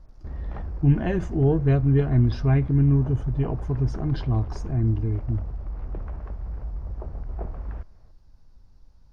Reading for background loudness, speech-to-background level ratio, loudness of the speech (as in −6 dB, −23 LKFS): −35.5 LKFS, 12.0 dB, −23.5 LKFS